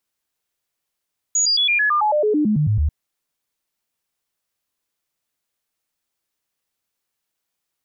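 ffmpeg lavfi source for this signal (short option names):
-f lavfi -i "aevalsrc='0.188*clip(min(mod(t,0.11),0.11-mod(t,0.11))/0.005,0,1)*sin(2*PI*6790*pow(2,-floor(t/0.11)/2)*mod(t,0.11))':d=1.54:s=44100"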